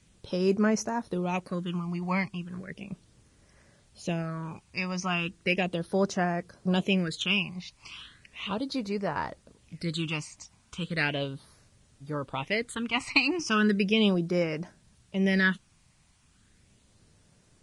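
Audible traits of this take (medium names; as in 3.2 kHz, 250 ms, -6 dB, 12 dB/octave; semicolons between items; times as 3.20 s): phasing stages 8, 0.36 Hz, lowest notch 440–3400 Hz; a quantiser's noise floor 12-bit, dither triangular; Vorbis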